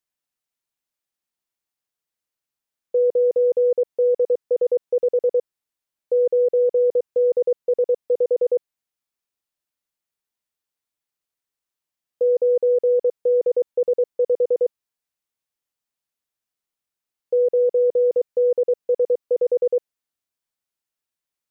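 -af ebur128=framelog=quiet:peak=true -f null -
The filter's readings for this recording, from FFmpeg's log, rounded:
Integrated loudness:
  I:         -20.6 LUFS
  Threshold: -30.6 LUFS
Loudness range:
  LRA:         6.9 LU
  Threshold: -42.8 LUFS
  LRA low:   -27.9 LUFS
  LRA high:  -21.0 LUFS
True peak:
  Peak:      -13.7 dBFS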